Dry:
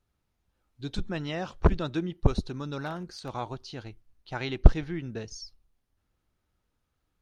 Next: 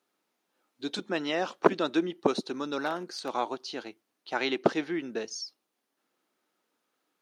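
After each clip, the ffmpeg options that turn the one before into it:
-af "highpass=f=260:w=0.5412,highpass=f=260:w=1.3066,volume=1.78"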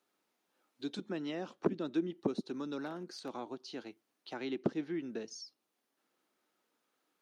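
-filter_complex "[0:a]acrossover=split=340[s0][s1];[s1]acompressor=threshold=0.00447:ratio=2.5[s2];[s0][s2]amix=inputs=2:normalize=0,volume=0.794"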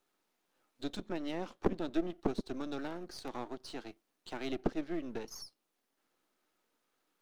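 -af "aeval=exprs='if(lt(val(0),0),0.251*val(0),val(0))':c=same,volume=1.5"

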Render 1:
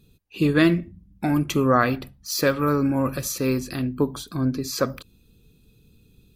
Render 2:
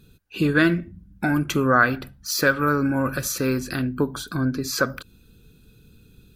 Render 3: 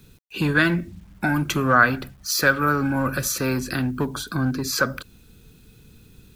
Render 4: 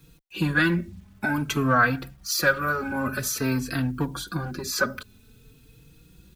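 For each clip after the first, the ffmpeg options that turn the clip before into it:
-filter_complex "[0:a]equalizer=f=1500:w=5.5:g=14,asplit=2[s0][s1];[s1]acompressor=threshold=0.0355:ratio=6,volume=1.33[s2];[s0][s2]amix=inputs=2:normalize=0,volume=0.668"
-filter_complex "[0:a]acrossover=split=220|570|2900[s0][s1][s2][s3];[s1]asoftclip=type=hard:threshold=0.0316[s4];[s0][s4][s2][s3]amix=inputs=4:normalize=0,acrusher=bits=9:mix=0:aa=0.000001,volume=1.26"
-filter_complex "[0:a]asplit=2[s0][s1];[s1]adelay=3.9,afreqshift=0.51[s2];[s0][s2]amix=inputs=2:normalize=1"

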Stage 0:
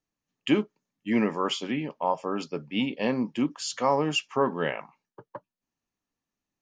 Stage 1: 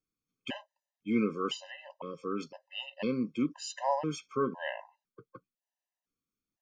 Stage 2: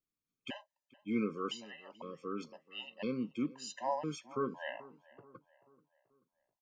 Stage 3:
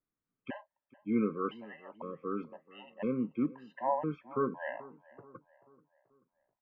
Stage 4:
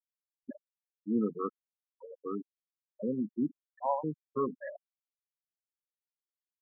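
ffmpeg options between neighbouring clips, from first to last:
-af "afftfilt=real='re*gt(sin(2*PI*0.99*pts/sr)*(1-2*mod(floor(b*sr/1024/520),2)),0)':imag='im*gt(sin(2*PI*0.99*pts/sr)*(1-2*mod(floor(b*sr/1024/520),2)),0)':win_size=1024:overlap=0.75,volume=0.631"
-filter_complex "[0:a]asplit=2[s0][s1];[s1]adelay=434,lowpass=f=2400:p=1,volume=0.0944,asplit=2[s2][s3];[s3]adelay=434,lowpass=f=2400:p=1,volume=0.5,asplit=2[s4][s5];[s5]adelay=434,lowpass=f=2400:p=1,volume=0.5,asplit=2[s6][s7];[s7]adelay=434,lowpass=f=2400:p=1,volume=0.5[s8];[s0][s2][s4][s6][s8]amix=inputs=5:normalize=0,volume=0.562"
-af "lowpass=f=1900:w=0.5412,lowpass=f=1900:w=1.3066,volume=1.58"
-af "afftfilt=real='re*gte(hypot(re,im),0.0562)':imag='im*gte(hypot(re,im),0.0562)':win_size=1024:overlap=0.75"

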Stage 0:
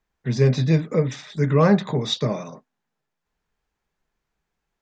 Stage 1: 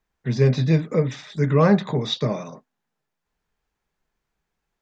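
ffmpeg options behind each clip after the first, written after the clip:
-filter_complex "[0:a]acrossover=split=5800[s0][s1];[s1]acompressor=threshold=0.00251:ratio=4:attack=1:release=60[s2];[s0][s2]amix=inputs=2:normalize=0"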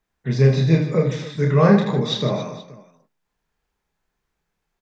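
-af "aecho=1:1:30|78|154.8|277.7|474.3:0.631|0.398|0.251|0.158|0.1"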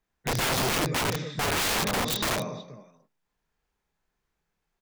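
-af "aeval=exprs='0.841*(cos(1*acos(clip(val(0)/0.841,-1,1)))-cos(1*PI/2))+0.0119*(cos(7*acos(clip(val(0)/0.841,-1,1)))-cos(7*PI/2))':c=same,aeval=exprs='(mod(8.91*val(0)+1,2)-1)/8.91':c=same,volume=0.75"

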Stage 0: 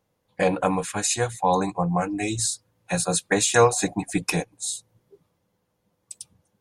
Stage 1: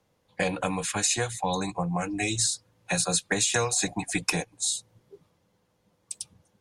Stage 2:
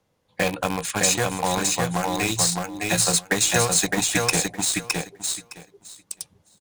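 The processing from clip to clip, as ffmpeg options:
-filter_complex "[0:a]aemphasis=mode=reproduction:type=50fm,acrossover=split=160|590|2100|7100[s0][s1][s2][s3][s4];[s0]acompressor=threshold=0.0126:ratio=4[s5];[s1]acompressor=threshold=0.0158:ratio=4[s6];[s2]acompressor=threshold=0.0141:ratio=4[s7];[s3]acompressor=threshold=0.0141:ratio=4[s8];[s4]acompressor=threshold=0.00891:ratio=4[s9];[s5][s6][s7][s8][s9]amix=inputs=5:normalize=0,highshelf=f=3500:g=11,volume=1.33"
-filter_complex "[0:a]asplit=2[s0][s1];[s1]acrusher=bits=3:mix=0:aa=0.000001,volume=0.631[s2];[s0][s2]amix=inputs=2:normalize=0,aecho=1:1:613|1226|1839:0.708|0.113|0.0181"

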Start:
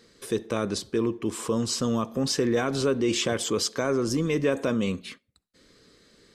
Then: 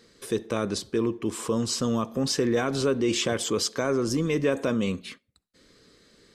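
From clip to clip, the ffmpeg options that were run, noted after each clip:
-af anull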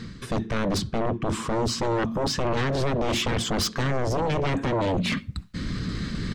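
-af "firequalizer=gain_entry='entry(160,0);entry(450,-24);entry(1100,-13);entry(11000,-29)':delay=0.05:min_phase=1,areverse,acompressor=mode=upward:threshold=0.0355:ratio=2.5,areverse,aeval=exprs='0.0631*sin(PI/2*3.55*val(0)/0.0631)':c=same,volume=1.41"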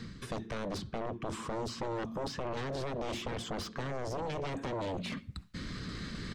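-filter_complex "[0:a]acrossover=split=390|960|3600[s0][s1][s2][s3];[s0]acompressor=threshold=0.02:ratio=4[s4];[s1]acompressor=threshold=0.0251:ratio=4[s5];[s2]acompressor=threshold=0.01:ratio=4[s6];[s3]acompressor=threshold=0.00708:ratio=4[s7];[s4][s5][s6][s7]amix=inputs=4:normalize=0,volume=0.501"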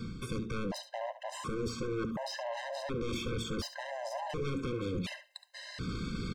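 -af "aeval=exprs='0.0596*sin(PI/2*1.78*val(0)/0.0596)':c=same,aecho=1:1:70:0.237,afftfilt=real='re*gt(sin(2*PI*0.69*pts/sr)*(1-2*mod(floor(b*sr/1024/530),2)),0)':imag='im*gt(sin(2*PI*0.69*pts/sr)*(1-2*mod(floor(b*sr/1024/530),2)),0)':win_size=1024:overlap=0.75,volume=0.631"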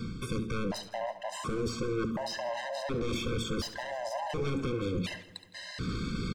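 -af "aecho=1:1:163|326|489|652:0.112|0.0561|0.0281|0.014,volume=1.41"

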